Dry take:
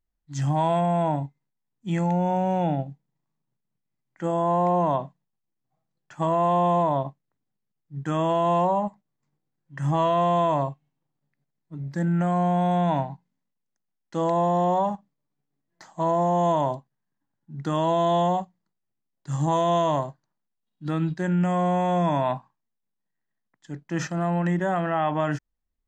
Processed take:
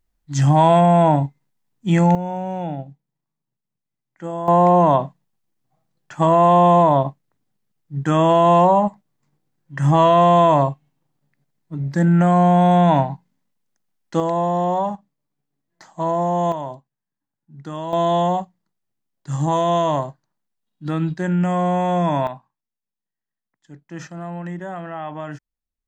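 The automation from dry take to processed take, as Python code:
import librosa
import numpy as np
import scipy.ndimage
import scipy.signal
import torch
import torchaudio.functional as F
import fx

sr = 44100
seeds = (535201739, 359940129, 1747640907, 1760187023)

y = fx.gain(x, sr, db=fx.steps((0.0, 9.5), (2.15, -2.5), (4.48, 8.5), (14.2, 2.0), (16.52, -5.0), (17.93, 3.5), (22.27, -6.0)))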